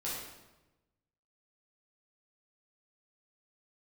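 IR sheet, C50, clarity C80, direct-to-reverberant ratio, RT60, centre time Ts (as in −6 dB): 0.0 dB, 3.0 dB, −8.0 dB, 1.1 s, 71 ms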